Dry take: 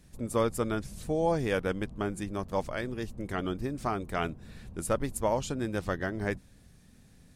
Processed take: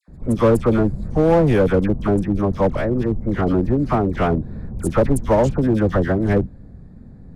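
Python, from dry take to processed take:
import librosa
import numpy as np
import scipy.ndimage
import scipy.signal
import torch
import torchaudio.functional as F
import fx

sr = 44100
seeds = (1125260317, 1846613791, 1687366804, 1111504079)

p1 = fx.wiener(x, sr, points=15)
p2 = fx.tilt_shelf(p1, sr, db=6.5, hz=970.0)
p3 = fx.dispersion(p2, sr, late='lows', ms=82.0, hz=1400.0)
p4 = 10.0 ** (-23.0 / 20.0) * (np.abs((p3 / 10.0 ** (-23.0 / 20.0) + 3.0) % 4.0 - 2.0) - 1.0)
p5 = p3 + F.gain(torch.from_numpy(p4), -8.0).numpy()
y = F.gain(torch.from_numpy(p5), 8.0).numpy()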